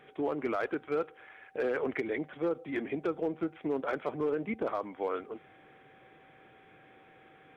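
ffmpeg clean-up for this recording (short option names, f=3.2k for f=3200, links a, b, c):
-af "bandreject=f=770:w=30"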